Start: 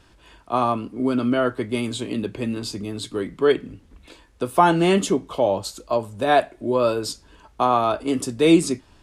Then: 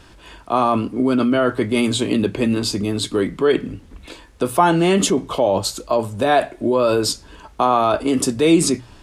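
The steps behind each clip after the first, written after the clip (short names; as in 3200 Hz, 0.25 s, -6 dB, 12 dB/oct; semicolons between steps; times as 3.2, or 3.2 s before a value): notches 60/120 Hz; in parallel at 0 dB: negative-ratio compressor -25 dBFS, ratio -1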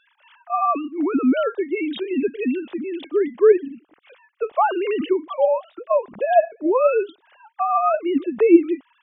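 sine-wave speech; gain -2 dB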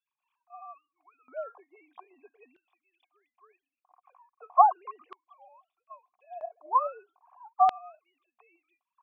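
vocal tract filter a; LFO high-pass square 0.39 Hz 990–3300 Hz; gain +4 dB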